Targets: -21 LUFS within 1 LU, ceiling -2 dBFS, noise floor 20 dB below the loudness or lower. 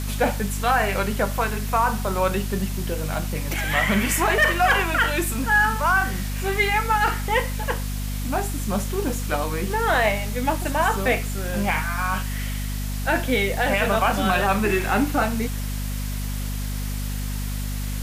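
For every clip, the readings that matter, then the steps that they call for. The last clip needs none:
hum 50 Hz; harmonics up to 250 Hz; hum level -25 dBFS; noise floor -27 dBFS; noise floor target -43 dBFS; loudness -23.0 LUFS; peak -8.0 dBFS; loudness target -21.0 LUFS
-> notches 50/100/150/200/250 Hz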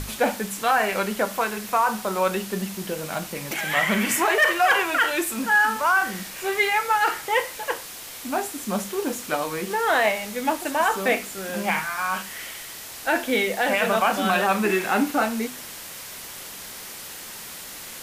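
hum none; noise floor -38 dBFS; noise floor target -43 dBFS
-> denoiser 6 dB, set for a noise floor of -38 dBFS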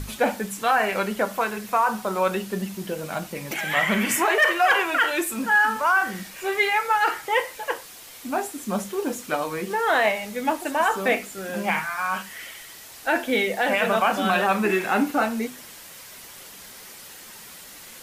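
noise floor -43 dBFS; noise floor target -44 dBFS
-> denoiser 6 dB, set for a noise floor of -43 dBFS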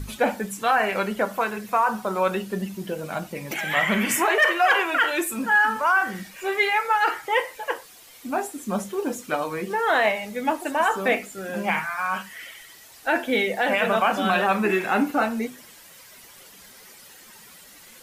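noise floor -48 dBFS; loudness -23.5 LUFS; peak -9.5 dBFS; loudness target -21.0 LUFS
-> gain +2.5 dB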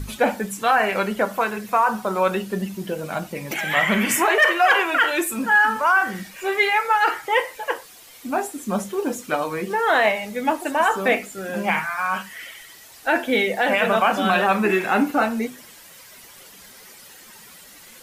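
loudness -21.0 LUFS; peak -7.0 dBFS; noise floor -46 dBFS

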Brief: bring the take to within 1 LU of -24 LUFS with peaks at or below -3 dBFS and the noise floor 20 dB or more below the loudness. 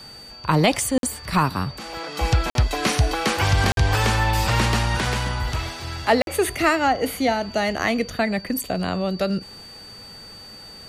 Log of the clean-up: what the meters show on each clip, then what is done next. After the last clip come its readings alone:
dropouts 4; longest dropout 52 ms; steady tone 4600 Hz; tone level -40 dBFS; loudness -22.0 LUFS; peak -7.0 dBFS; loudness target -24.0 LUFS
-> interpolate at 0.98/2.5/3.72/6.22, 52 ms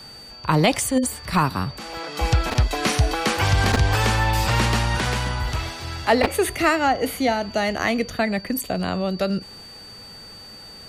dropouts 0; steady tone 4600 Hz; tone level -40 dBFS
-> notch 4600 Hz, Q 30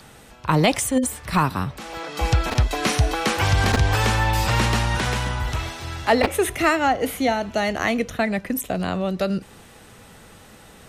steady tone none; loudness -22.0 LUFS; peak -5.0 dBFS; loudness target -24.0 LUFS
-> gain -2 dB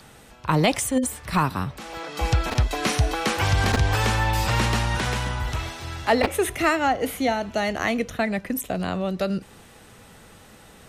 loudness -24.0 LUFS; peak -7.0 dBFS; noise floor -49 dBFS

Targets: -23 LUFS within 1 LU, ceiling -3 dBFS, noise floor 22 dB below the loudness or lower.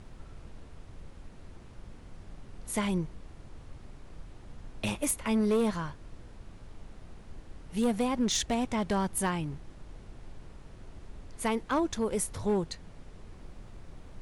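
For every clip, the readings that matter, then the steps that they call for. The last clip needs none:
clipped 0.9%; flat tops at -22.0 dBFS; noise floor -50 dBFS; noise floor target -53 dBFS; loudness -31.0 LUFS; peak -22.0 dBFS; loudness target -23.0 LUFS
-> clip repair -22 dBFS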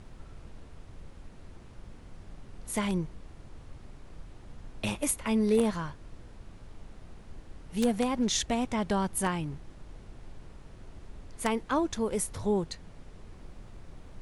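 clipped 0.0%; noise floor -50 dBFS; noise floor target -52 dBFS
-> noise print and reduce 6 dB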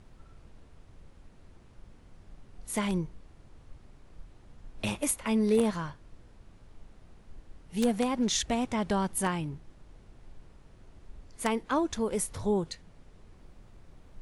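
noise floor -56 dBFS; loudness -30.0 LUFS; peak -13.0 dBFS; loudness target -23.0 LUFS
-> gain +7 dB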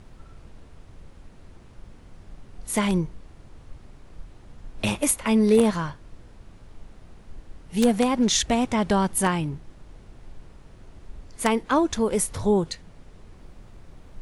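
loudness -23.0 LUFS; peak -6.0 dBFS; noise floor -49 dBFS

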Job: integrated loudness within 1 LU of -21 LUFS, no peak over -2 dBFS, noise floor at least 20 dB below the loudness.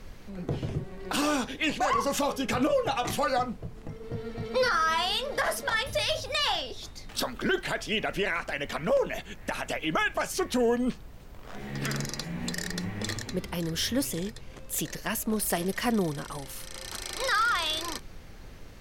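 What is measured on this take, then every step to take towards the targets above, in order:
noise floor -46 dBFS; noise floor target -50 dBFS; loudness -29.5 LUFS; peak -14.5 dBFS; loudness target -21.0 LUFS
-> noise print and reduce 6 dB; gain +8.5 dB

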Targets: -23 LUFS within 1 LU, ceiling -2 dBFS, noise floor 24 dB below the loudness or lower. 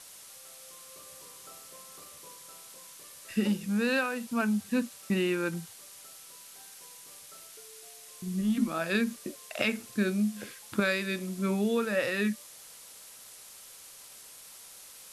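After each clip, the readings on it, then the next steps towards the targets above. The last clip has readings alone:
noise floor -50 dBFS; noise floor target -55 dBFS; loudness -30.5 LUFS; peak -13.0 dBFS; loudness target -23.0 LUFS
-> denoiser 6 dB, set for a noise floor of -50 dBFS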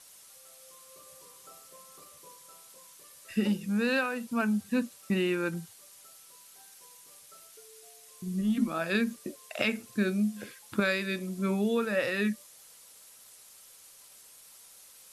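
noise floor -54 dBFS; noise floor target -55 dBFS
-> denoiser 6 dB, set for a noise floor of -54 dBFS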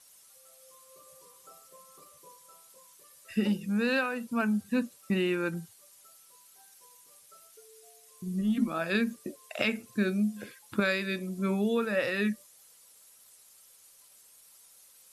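noise floor -58 dBFS; loudness -30.5 LUFS; peak -13.0 dBFS; loudness target -23.0 LUFS
-> gain +7.5 dB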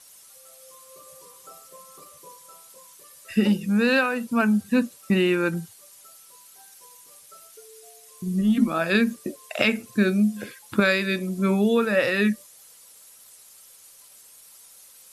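loudness -23.0 LUFS; peak -5.5 dBFS; noise floor -51 dBFS

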